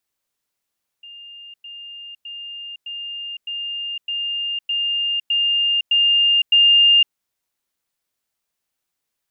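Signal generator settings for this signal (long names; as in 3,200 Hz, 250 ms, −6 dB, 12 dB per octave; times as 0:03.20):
level staircase 2,810 Hz −36.5 dBFS, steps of 3 dB, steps 10, 0.51 s 0.10 s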